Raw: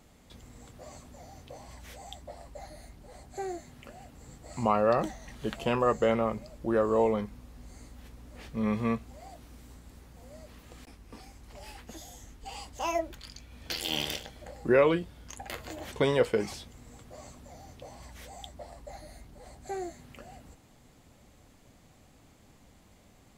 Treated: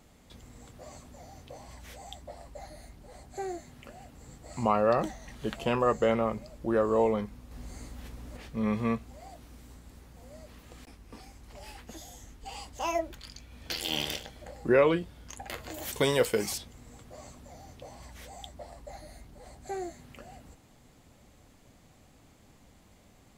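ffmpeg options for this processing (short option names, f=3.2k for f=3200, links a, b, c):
-filter_complex "[0:a]asettb=1/sr,asplit=3[a][b][c];[a]atrim=end=7.514[d];[b]atrim=start=7.51:end=8.37,asetpts=PTS-STARTPTS,afade=t=in:d=0.004:c=qsin,afade=t=out:st=0.856:d=0.004:c=qsin,acontrast=29[e];[c]atrim=start=8.366[f];[d][e]acrossfade=d=0.004:c1=hsin:c2=qsin[g];[g][f]acrossfade=d=0.004:c1=qsin:c2=hsin,asettb=1/sr,asplit=3[h][i][j];[h]atrim=end=15.744[k];[i]atrim=start=15.74:end=16.58,asetpts=PTS-STARTPTS,afade=t=in:d=0.004:c=qsin,afade=t=out:st=0.836:d=0.004:c=qsin,aemphasis=mode=production:type=75fm[l];[j]atrim=start=16.576[m];[k][l]acrossfade=d=0.004:c1=hsin:c2=qsin[n];[n][m]acrossfade=d=0.004:c1=qsin:c2=hsin"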